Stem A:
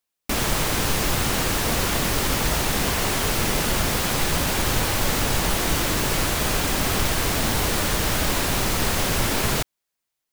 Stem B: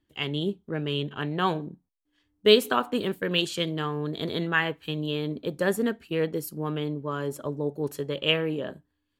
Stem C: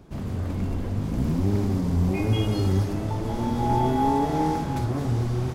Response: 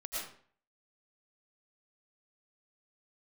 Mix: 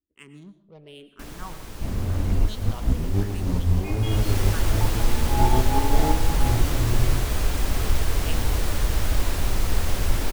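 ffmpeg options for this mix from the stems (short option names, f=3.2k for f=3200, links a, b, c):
-filter_complex "[0:a]equalizer=f=180:w=0.37:g=6,adelay=900,volume=-9dB,afade=t=in:st=3.99:d=0.39:silence=0.251189[a];[1:a]adynamicsmooth=sensitivity=4:basefreq=690,asplit=2[b][c];[c]afreqshift=-0.98[d];[b][d]amix=inputs=2:normalize=1,volume=-14dB,asplit=3[e][f][g];[f]volume=-12dB[h];[2:a]adelay=1700,volume=1.5dB[i];[g]apad=whole_len=319436[j];[i][j]sidechaincompress=threshold=-48dB:ratio=8:attack=5.4:release=104[k];[3:a]atrim=start_sample=2205[l];[h][l]afir=irnorm=-1:irlink=0[m];[a][e][k][m]amix=inputs=4:normalize=0,asubboost=boost=7.5:cutoff=60"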